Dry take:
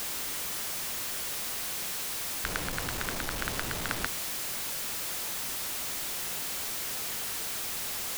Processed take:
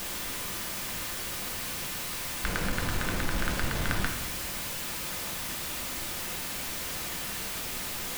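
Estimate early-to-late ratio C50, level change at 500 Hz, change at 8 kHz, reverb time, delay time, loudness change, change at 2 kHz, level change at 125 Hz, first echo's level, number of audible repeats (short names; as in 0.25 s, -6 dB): 7.0 dB, +2.5 dB, -1.5 dB, 0.75 s, none, 0.0 dB, +2.0 dB, +7.5 dB, none, none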